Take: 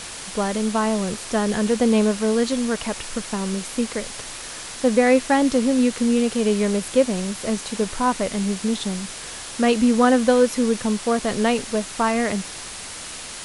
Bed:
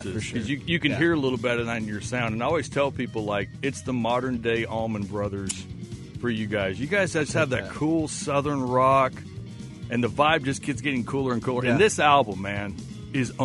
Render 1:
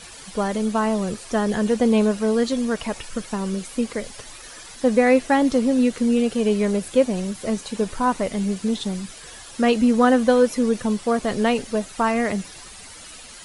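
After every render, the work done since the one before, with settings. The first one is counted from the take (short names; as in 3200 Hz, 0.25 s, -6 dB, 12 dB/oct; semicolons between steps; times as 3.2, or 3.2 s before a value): denoiser 11 dB, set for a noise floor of -35 dBFS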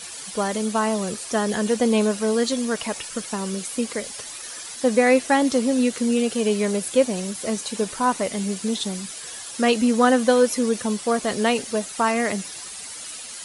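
HPF 200 Hz 6 dB/oct; high shelf 4500 Hz +9 dB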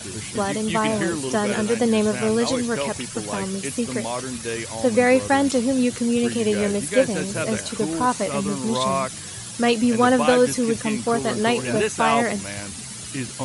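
add bed -4 dB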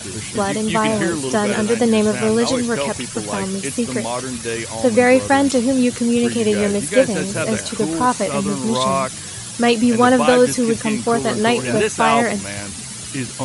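gain +4 dB; limiter -1 dBFS, peak gain reduction 1 dB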